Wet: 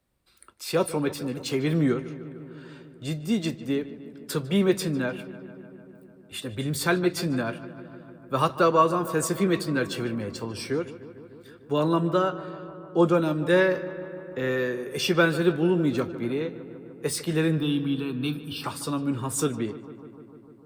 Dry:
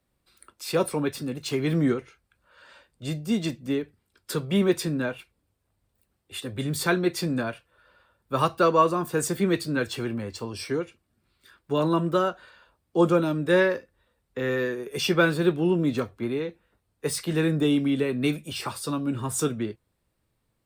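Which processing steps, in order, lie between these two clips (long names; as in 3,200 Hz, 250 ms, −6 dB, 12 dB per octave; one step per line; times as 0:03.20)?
0:12.07–0:13.14: high-shelf EQ 8,800 Hz −8.5 dB
0:17.58–0:18.64: phaser with its sweep stopped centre 2,000 Hz, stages 6
feedback echo with a low-pass in the loop 150 ms, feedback 79%, low-pass 3,100 Hz, level −15.5 dB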